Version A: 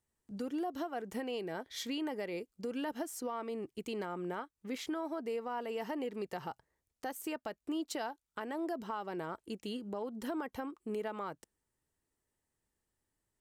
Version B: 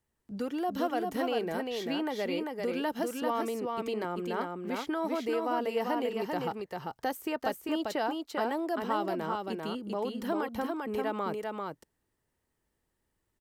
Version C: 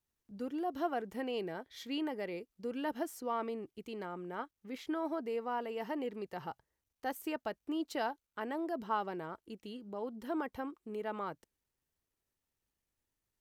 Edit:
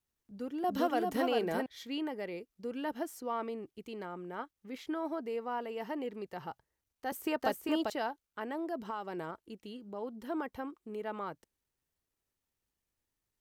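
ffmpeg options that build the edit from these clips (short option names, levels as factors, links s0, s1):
-filter_complex "[1:a]asplit=2[s0][s1];[2:a]asplit=4[s2][s3][s4][s5];[s2]atrim=end=0.642[s6];[s0]atrim=start=0.638:end=1.662[s7];[s3]atrim=start=1.658:end=7.122[s8];[s1]atrim=start=7.118:end=7.902[s9];[s4]atrim=start=7.898:end=8.852[s10];[0:a]atrim=start=8.848:end=9.312[s11];[s5]atrim=start=9.308[s12];[s6][s7]acrossfade=d=0.004:c1=hsin:c2=hsin[s13];[s13][s8]acrossfade=d=0.004:c1=hsin:c2=hsin[s14];[s14][s9]acrossfade=d=0.004:c1=hsin:c2=hsin[s15];[s15][s10]acrossfade=d=0.004:c1=hsin:c2=hsin[s16];[s16][s11]acrossfade=d=0.004:c1=hsin:c2=hsin[s17];[s17][s12]acrossfade=d=0.004:c1=hsin:c2=hsin"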